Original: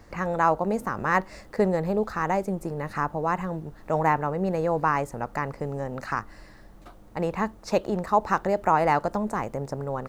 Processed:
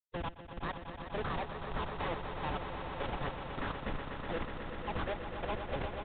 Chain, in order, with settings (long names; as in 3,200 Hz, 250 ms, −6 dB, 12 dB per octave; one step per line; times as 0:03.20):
high-pass filter 930 Hz 12 dB per octave
downward expander −54 dBFS
reversed playback
downward compressor 4 to 1, threshold −43 dBFS, peak gain reduction 20.5 dB
reversed playback
gate pattern ".x..x...xx..x" 63 BPM −24 dB
comparator with hysteresis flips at −49.5 dBFS
phase-vocoder stretch with locked phases 0.6×
on a send: echo that builds up and dies away 123 ms, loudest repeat 5, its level −9.5 dB
on the sum: downsampling to 8,000 Hz
level +15.5 dB